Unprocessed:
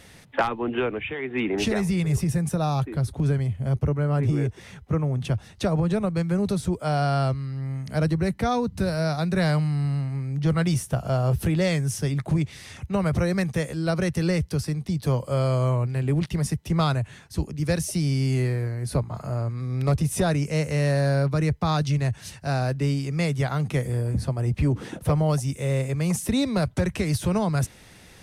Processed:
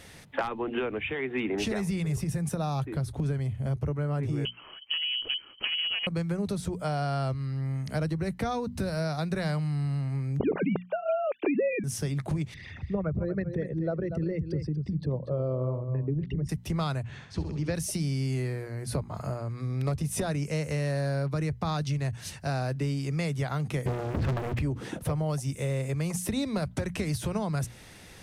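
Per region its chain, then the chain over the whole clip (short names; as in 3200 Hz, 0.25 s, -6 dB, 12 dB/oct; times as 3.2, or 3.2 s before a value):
4.45–6.07 tube stage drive 22 dB, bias 0.7 + inverted band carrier 3100 Hz
10.4–11.84 sine-wave speech + small resonant body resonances 400/2400 Hz, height 15 dB, ringing for 20 ms
12.54–16.49 formant sharpening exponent 2 + LPF 3100 Hz + echo 0.239 s -11 dB
17.03–17.75 Bessel low-pass 4500 Hz, order 4 + flutter echo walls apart 11.3 m, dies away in 0.62 s
23.86–24.59 LPF 2800 Hz 24 dB/oct + sample leveller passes 5
whole clip: compressor 4:1, threshold -27 dBFS; notches 60/120/180/240 Hz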